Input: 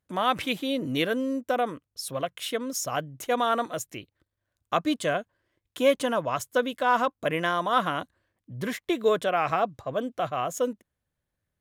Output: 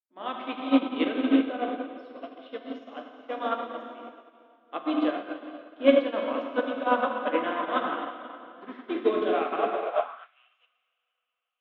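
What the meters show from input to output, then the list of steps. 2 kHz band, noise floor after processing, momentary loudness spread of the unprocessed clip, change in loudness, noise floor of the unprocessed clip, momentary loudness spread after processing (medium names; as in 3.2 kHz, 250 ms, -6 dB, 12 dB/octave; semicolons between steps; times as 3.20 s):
-4.0 dB, -81 dBFS, 9 LU, 0.0 dB, -84 dBFS, 19 LU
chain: elliptic band-pass 220–3400 Hz, stop band 40 dB; hum notches 60/120/180/240/300/360 Hz; plate-style reverb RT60 4.8 s, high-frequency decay 0.8×, DRR -4 dB; high-pass sweep 280 Hz -> 2.4 kHz, 9.70–10.37 s; upward expansion 2.5:1, over -38 dBFS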